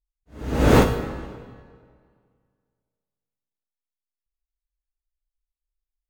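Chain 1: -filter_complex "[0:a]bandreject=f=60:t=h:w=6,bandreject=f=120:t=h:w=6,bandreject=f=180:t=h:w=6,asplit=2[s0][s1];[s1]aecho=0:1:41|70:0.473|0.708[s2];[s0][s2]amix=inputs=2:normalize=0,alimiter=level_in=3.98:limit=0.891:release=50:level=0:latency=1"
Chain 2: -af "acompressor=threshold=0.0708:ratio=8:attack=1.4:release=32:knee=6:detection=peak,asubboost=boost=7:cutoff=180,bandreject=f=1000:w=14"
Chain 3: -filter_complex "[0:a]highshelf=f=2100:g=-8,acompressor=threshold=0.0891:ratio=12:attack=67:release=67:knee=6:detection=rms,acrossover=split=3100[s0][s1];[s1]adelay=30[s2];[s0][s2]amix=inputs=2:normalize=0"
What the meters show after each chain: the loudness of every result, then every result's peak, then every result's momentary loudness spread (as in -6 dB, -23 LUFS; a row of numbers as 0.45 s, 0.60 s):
-13.5 LUFS, -28.0 LUFS, -26.5 LUFS; -1.0 dBFS, -13.0 dBFS, -10.5 dBFS; 18 LU, 20 LU, 17 LU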